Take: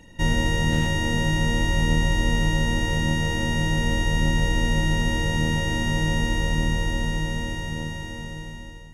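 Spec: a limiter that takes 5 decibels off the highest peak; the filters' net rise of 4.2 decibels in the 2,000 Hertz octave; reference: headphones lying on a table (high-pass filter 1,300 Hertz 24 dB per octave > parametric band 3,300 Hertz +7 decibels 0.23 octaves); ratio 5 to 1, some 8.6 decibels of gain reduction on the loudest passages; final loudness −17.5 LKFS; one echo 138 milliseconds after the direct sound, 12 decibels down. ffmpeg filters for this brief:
ffmpeg -i in.wav -af "equalizer=frequency=2000:width_type=o:gain=4.5,acompressor=threshold=-26dB:ratio=5,alimiter=limit=-22dB:level=0:latency=1,highpass=frequency=1300:width=0.5412,highpass=frequency=1300:width=1.3066,equalizer=frequency=3300:width_type=o:width=0.23:gain=7,aecho=1:1:138:0.251,volume=15.5dB" out.wav

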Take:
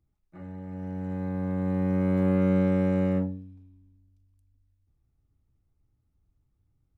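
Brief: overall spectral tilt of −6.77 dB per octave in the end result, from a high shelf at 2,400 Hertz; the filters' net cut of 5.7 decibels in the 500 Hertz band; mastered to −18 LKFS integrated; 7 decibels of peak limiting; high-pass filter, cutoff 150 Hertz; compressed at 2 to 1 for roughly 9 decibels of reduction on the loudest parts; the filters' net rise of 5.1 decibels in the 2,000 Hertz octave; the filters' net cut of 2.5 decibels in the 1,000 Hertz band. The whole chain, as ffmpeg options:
ffmpeg -i in.wav -af "highpass=150,equalizer=frequency=500:width_type=o:gain=-6.5,equalizer=frequency=1000:width_type=o:gain=-3.5,equalizer=frequency=2000:width_type=o:gain=4.5,highshelf=frequency=2400:gain=7,acompressor=threshold=-40dB:ratio=2,volume=24dB,alimiter=limit=-10dB:level=0:latency=1" out.wav

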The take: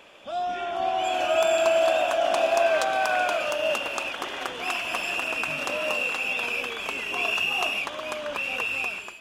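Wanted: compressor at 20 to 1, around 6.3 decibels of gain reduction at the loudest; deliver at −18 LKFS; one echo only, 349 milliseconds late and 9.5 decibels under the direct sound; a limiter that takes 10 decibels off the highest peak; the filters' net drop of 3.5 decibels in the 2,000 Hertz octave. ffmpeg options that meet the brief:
ffmpeg -i in.wav -af "equalizer=frequency=2000:width_type=o:gain=-5.5,acompressor=threshold=-24dB:ratio=20,alimiter=limit=-21.5dB:level=0:latency=1,aecho=1:1:349:0.335,volume=12dB" out.wav

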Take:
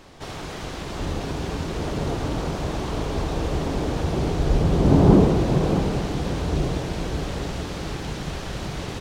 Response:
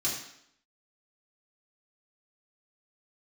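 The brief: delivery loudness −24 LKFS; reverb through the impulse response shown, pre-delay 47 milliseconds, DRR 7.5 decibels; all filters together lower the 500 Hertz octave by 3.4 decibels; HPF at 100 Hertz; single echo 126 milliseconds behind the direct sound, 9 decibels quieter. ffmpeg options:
-filter_complex "[0:a]highpass=100,equalizer=frequency=500:width_type=o:gain=-4.5,aecho=1:1:126:0.355,asplit=2[link_01][link_02];[1:a]atrim=start_sample=2205,adelay=47[link_03];[link_02][link_03]afir=irnorm=-1:irlink=0,volume=-13.5dB[link_04];[link_01][link_04]amix=inputs=2:normalize=0,volume=0.5dB"

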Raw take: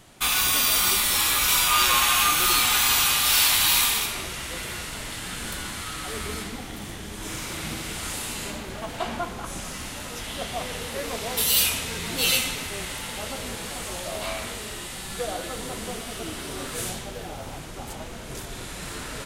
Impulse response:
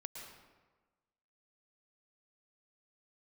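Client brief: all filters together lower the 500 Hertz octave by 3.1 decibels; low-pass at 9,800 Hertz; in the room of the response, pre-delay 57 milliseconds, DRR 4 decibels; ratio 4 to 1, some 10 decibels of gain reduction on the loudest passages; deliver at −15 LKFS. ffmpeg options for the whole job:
-filter_complex "[0:a]lowpass=9800,equalizer=frequency=500:width_type=o:gain=-4,acompressor=threshold=-30dB:ratio=4,asplit=2[link_01][link_02];[1:a]atrim=start_sample=2205,adelay=57[link_03];[link_02][link_03]afir=irnorm=-1:irlink=0,volume=-1dB[link_04];[link_01][link_04]amix=inputs=2:normalize=0,volume=16dB"

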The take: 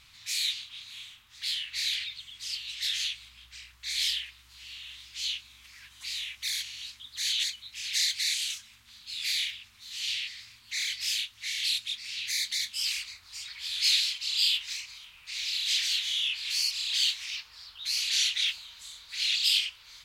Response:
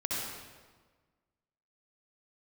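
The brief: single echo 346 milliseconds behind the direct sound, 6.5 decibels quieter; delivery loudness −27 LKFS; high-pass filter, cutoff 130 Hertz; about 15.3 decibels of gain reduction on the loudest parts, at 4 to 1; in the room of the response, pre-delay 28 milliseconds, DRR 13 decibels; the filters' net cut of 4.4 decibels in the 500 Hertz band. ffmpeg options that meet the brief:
-filter_complex "[0:a]highpass=130,equalizer=frequency=500:width_type=o:gain=-6,acompressor=threshold=-40dB:ratio=4,aecho=1:1:346:0.473,asplit=2[link_01][link_02];[1:a]atrim=start_sample=2205,adelay=28[link_03];[link_02][link_03]afir=irnorm=-1:irlink=0,volume=-19dB[link_04];[link_01][link_04]amix=inputs=2:normalize=0,volume=12dB"

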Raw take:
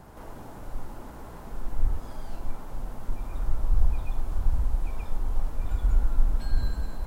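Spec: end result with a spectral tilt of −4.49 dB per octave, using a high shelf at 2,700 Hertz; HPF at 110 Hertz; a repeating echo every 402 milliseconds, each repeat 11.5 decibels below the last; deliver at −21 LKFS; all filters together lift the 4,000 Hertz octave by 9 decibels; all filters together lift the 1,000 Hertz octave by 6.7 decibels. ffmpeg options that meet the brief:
ffmpeg -i in.wav -af "highpass=110,equalizer=frequency=1000:width_type=o:gain=7,highshelf=frequency=2700:gain=7.5,equalizer=frequency=4000:width_type=o:gain=4,aecho=1:1:402|804|1206:0.266|0.0718|0.0194,volume=18.5dB" out.wav

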